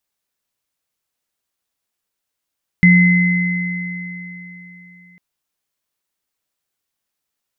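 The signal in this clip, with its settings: sine partials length 2.35 s, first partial 178 Hz, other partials 2050 Hz, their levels -3.5 dB, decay 3.41 s, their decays 3.75 s, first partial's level -6.5 dB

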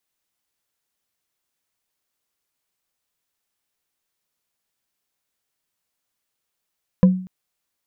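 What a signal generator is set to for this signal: wood hit bar, length 0.24 s, lowest mode 185 Hz, decay 0.47 s, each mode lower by 9 dB, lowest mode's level -6 dB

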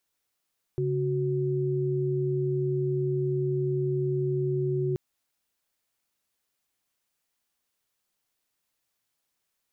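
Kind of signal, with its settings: chord C#3/F#4 sine, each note -27 dBFS 4.18 s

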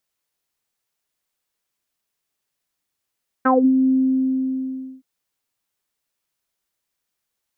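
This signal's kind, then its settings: synth note saw C4 24 dB/oct, low-pass 290 Hz, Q 5.9, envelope 2.5 oct, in 0.19 s, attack 11 ms, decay 0.26 s, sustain -8 dB, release 1.14 s, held 0.43 s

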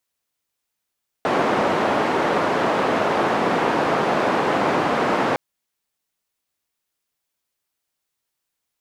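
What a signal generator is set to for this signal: noise band 220–920 Hz, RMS -20 dBFS 4.11 s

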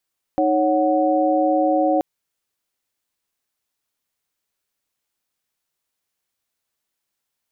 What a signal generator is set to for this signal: chord D#4/C#5/F#5 sine, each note -19.5 dBFS 1.63 s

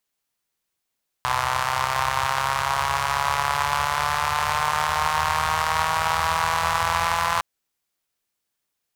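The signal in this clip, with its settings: four-cylinder engine model, changing speed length 6.16 s, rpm 3800, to 5100, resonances 85/1000 Hz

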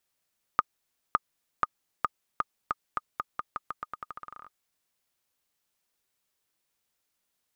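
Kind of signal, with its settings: bouncing ball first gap 0.56 s, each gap 0.86, 1230 Hz, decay 31 ms -8 dBFS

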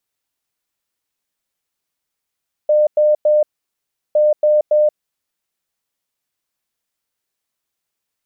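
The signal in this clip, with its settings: beep pattern sine 603 Hz, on 0.18 s, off 0.10 s, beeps 3, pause 0.72 s, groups 2, -9.5 dBFS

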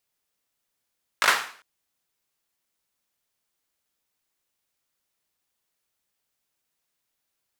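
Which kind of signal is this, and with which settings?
hand clap length 0.40 s, bursts 4, apart 19 ms, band 1400 Hz, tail 0.47 s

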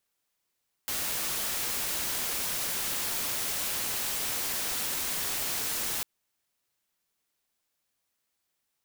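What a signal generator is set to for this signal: noise white, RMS -31.5 dBFS 5.15 s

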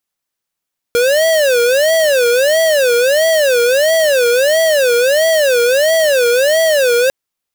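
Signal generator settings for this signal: siren wail 474–653 Hz 1.5/s square -11.5 dBFS 6.15 s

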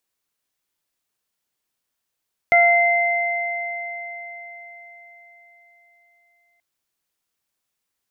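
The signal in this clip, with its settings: additive tone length 4.08 s, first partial 692 Hz, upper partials -14/1 dB, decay 4.29 s, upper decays 0.62/4.80 s, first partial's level -13.5 dB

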